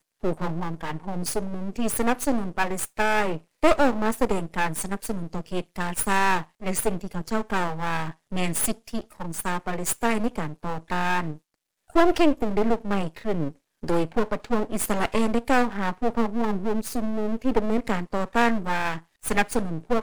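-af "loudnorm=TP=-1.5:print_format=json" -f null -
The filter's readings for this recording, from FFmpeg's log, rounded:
"input_i" : "-26.2",
"input_tp" : "-4.3",
"input_lra" : "3.1",
"input_thresh" : "-36.3",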